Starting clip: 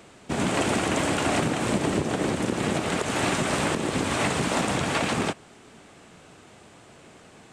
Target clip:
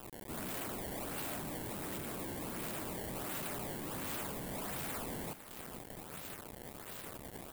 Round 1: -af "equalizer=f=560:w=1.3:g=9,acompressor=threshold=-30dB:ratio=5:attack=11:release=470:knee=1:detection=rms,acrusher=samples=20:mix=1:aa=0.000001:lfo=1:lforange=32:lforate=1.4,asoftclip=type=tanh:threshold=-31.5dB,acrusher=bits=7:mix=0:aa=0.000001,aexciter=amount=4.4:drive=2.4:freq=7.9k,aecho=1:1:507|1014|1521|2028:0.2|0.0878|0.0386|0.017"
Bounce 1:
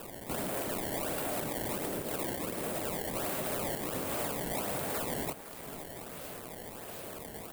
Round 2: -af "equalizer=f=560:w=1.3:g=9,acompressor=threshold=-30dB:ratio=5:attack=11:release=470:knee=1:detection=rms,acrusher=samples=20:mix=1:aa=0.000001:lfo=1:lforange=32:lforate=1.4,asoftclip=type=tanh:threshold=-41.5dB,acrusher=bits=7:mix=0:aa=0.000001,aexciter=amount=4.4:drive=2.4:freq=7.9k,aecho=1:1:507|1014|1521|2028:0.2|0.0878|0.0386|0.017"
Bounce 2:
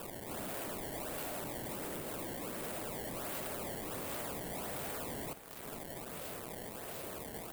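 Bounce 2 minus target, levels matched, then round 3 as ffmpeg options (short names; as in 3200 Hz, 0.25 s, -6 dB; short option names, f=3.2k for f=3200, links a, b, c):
500 Hz band +2.0 dB
-af "acompressor=threshold=-30dB:ratio=5:attack=11:release=470:knee=1:detection=rms,acrusher=samples=20:mix=1:aa=0.000001:lfo=1:lforange=32:lforate=1.4,asoftclip=type=tanh:threshold=-41.5dB,acrusher=bits=7:mix=0:aa=0.000001,aexciter=amount=4.4:drive=2.4:freq=7.9k,aecho=1:1:507|1014|1521|2028:0.2|0.0878|0.0386|0.017"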